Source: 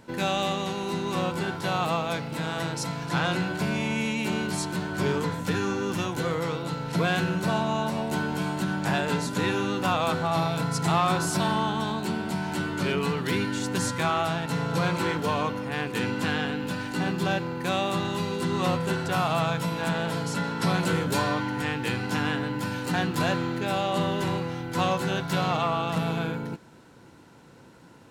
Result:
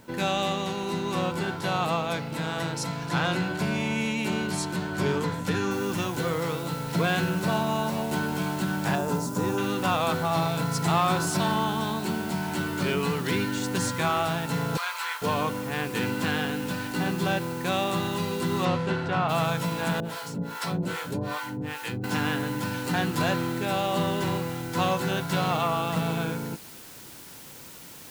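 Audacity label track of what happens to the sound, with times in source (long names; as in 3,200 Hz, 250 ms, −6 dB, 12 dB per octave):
5.710000	5.710000	noise floor change −63 dB −46 dB
8.950000	9.580000	flat-topped bell 2,600 Hz −11.5 dB
14.770000	15.220000	high-pass filter 950 Hz 24 dB per octave
18.640000	19.280000	low-pass filter 5,900 Hz → 2,500 Hz
20.000000	22.040000	two-band tremolo in antiphase 2.5 Hz, depth 100%, crossover 580 Hz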